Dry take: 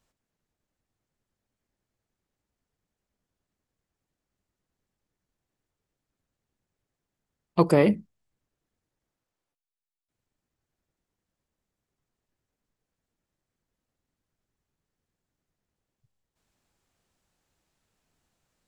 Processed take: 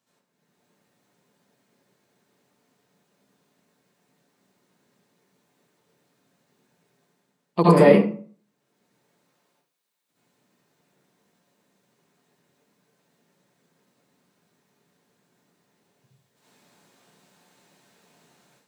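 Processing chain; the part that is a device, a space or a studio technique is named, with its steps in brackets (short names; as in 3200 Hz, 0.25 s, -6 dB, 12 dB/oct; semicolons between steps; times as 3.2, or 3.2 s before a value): far laptop microphone (reverb RT60 0.45 s, pre-delay 64 ms, DRR -8.5 dB; HPF 140 Hz 24 dB/oct; AGC gain up to 10 dB); gain -1 dB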